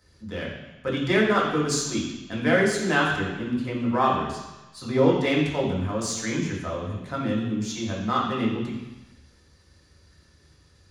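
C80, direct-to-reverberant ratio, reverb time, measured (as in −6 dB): 5.0 dB, −3.5 dB, 1.0 s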